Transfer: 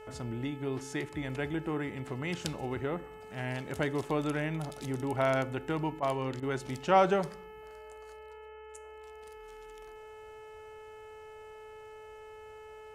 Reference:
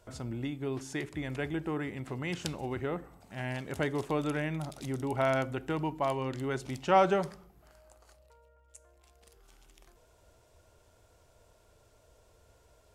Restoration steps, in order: de-hum 432.4 Hz, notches 7; interpolate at 6.00/6.40 s, 24 ms

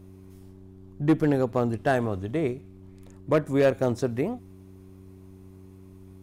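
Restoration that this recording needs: clip repair -14 dBFS; de-hum 94.6 Hz, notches 4

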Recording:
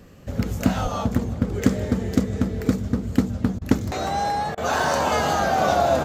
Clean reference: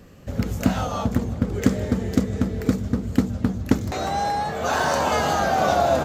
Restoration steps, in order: 0.82–0.94 s: high-pass 140 Hz 24 dB/octave; interpolate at 3.59/4.55 s, 24 ms

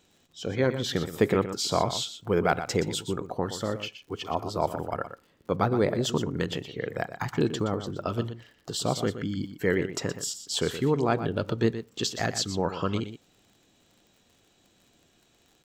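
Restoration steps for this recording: de-click; inverse comb 121 ms -11 dB

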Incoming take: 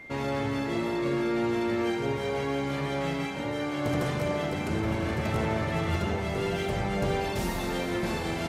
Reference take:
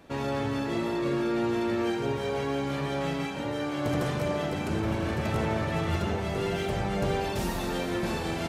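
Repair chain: band-stop 2.1 kHz, Q 30

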